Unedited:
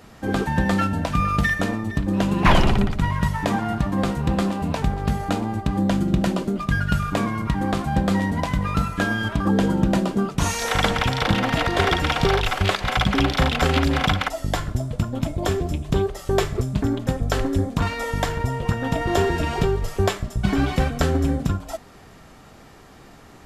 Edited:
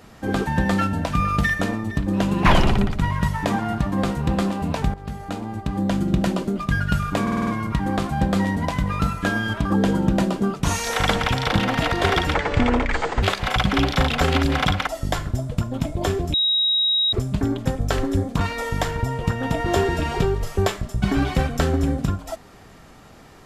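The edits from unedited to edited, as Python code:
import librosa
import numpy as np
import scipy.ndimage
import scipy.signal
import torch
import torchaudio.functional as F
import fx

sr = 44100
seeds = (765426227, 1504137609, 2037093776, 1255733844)

y = fx.edit(x, sr, fx.fade_in_from(start_s=4.94, length_s=1.19, floor_db=-12.0),
    fx.stutter(start_s=7.22, slice_s=0.05, count=6),
    fx.speed_span(start_s=12.09, length_s=0.55, speed=0.62),
    fx.bleep(start_s=15.75, length_s=0.79, hz=3810.0, db=-16.5), tone=tone)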